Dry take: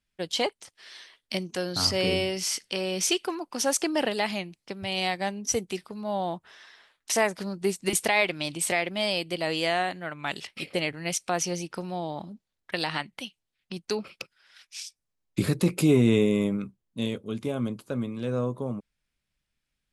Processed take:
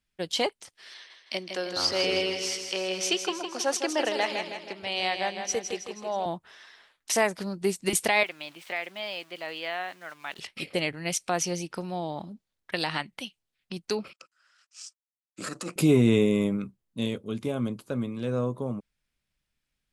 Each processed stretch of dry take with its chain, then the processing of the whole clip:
0.94–6.26 three-band isolator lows -15 dB, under 310 Hz, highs -12 dB, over 6400 Hz + feedback echo 0.16 s, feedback 51%, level -7 dB
8.23–10.39 air absorption 300 m + sample gate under -47 dBFS + HPF 1300 Hz 6 dB/oct
14.13–15.76 G.711 law mismatch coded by A + transient shaper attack -9 dB, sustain +4 dB + speaker cabinet 370–8900 Hz, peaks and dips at 410 Hz -9 dB, 850 Hz -6 dB, 1300 Hz +9 dB, 2200 Hz -8 dB, 3600 Hz -9 dB, 7400 Hz +6 dB
whole clip: dry

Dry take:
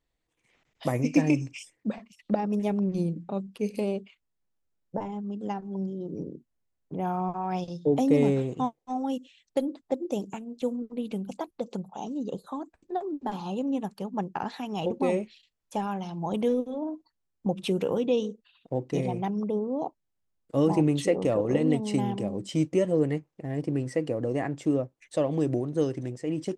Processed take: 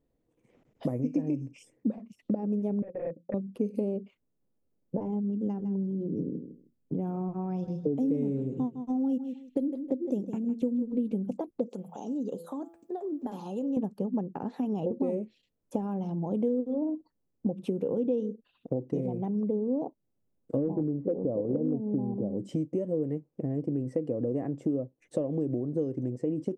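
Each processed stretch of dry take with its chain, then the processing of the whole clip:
2.82–3.34 wrapped overs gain 23.5 dB + transient shaper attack +7 dB, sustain -12 dB + vocal tract filter e
5.3–11.15 bell 700 Hz -7 dB 1.6 oct + feedback echo 0.157 s, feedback 18%, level -14 dB
11.69–13.77 tilt +3.5 dB/oct + de-hum 167.9 Hz, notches 21 + compressor 2.5:1, threshold -42 dBFS
20.57–22.37 LPF 1000 Hz 24 dB/oct + overloaded stage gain 15.5 dB
whole clip: low shelf 240 Hz +5 dB; compressor 6:1, threshold -36 dBFS; ten-band EQ 125 Hz +6 dB, 250 Hz +11 dB, 500 Hz +11 dB, 2000 Hz -4 dB, 4000 Hz -7 dB, 8000 Hz -3 dB; gain -3.5 dB

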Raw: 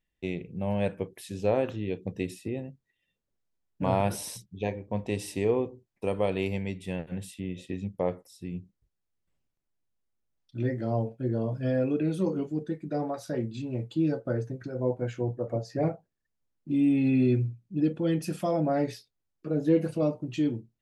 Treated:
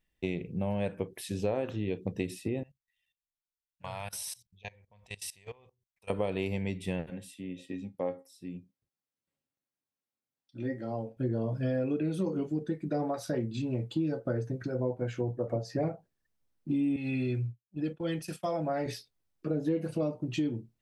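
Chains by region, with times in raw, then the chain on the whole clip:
2.63–6.1 passive tone stack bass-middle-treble 10-0-10 + level quantiser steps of 21 dB
7.1–11.17 HPF 130 Hz + resonator 270 Hz, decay 0.17 s, mix 70%
16.96–18.86 expander -33 dBFS + bell 250 Hz -9 dB 2.4 oct + three-band expander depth 40%
whole clip: notch 6900 Hz, Q 20; compressor 4:1, threshold -31 dBFS; gain +3 dB

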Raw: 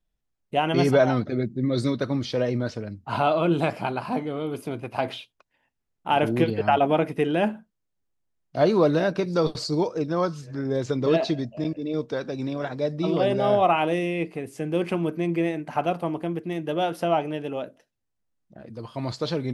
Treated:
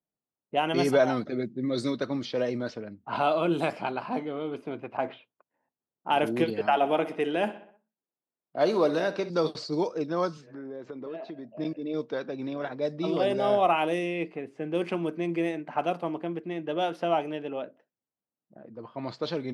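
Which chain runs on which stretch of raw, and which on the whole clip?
4.97–6.1 LPF 2000 Hz + short-mantissa float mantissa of 6-bit
6.66–9.3 HPF 230 Hz 6 dB/oct + feedback echo 63 ms, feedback 54%, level -15 dB
10.37–11.52 HPF 180 Hz + compressor 4:1, threshold -33 dBFS
whole clip: low-pass opened by the level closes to 1100 Hz, open at -18 dBFS; HPF 200 Hz 12 dB/oct; high shelf 6600 Hz +5 dB; gain -3 dB

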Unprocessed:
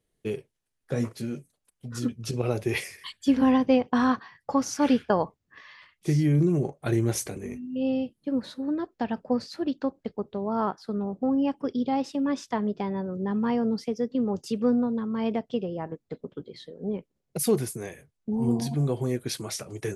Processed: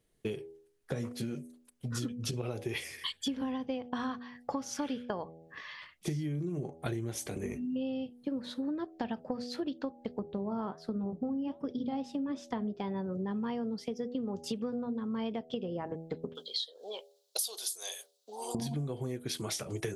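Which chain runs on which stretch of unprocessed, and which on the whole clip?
10.19–12.76 low shelf 380 Hz +8.5 dB + flange 1.2 Hz, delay 0.8 ms, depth 8 ms, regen -76%
16.35–18.55 HPF 600 Hz 24 dB/oct + resonant high shelf 2900 Hz +11 dB, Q 3
whole clip: dynamic EQ 3300 Hz, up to +7 dB, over -59 dBFS, Q 4.8; de-hum 81.35 Hz, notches 10; compressor 12:1, threshold -35 dBFS; gain +3 dB

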